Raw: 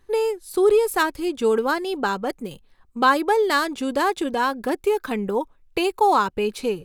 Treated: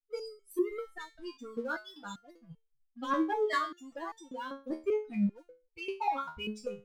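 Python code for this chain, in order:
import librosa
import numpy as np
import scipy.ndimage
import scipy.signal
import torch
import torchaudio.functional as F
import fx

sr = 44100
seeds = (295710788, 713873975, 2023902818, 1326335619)

p1 = fx.bin_expand(x, sr, power=3.0)
p2 = fx.env_lowpass_down(p1, sr, base_hz=1200.0, full_db=-18.0)
p3 = fx.leveller(p2, sr, passes=1)
p4 = 10.0 ** (-23.5 / 20.0) * np.tanh(p3 / 10.0 ** (-23.5 / 20.0))
p5 = p3 + F.gain(torch.from_numpy(p4), -5.0).numpy()
y = fx.resonator_held(p5, sr, hz=5.1, low_hz=79.0, high_hz=450.0)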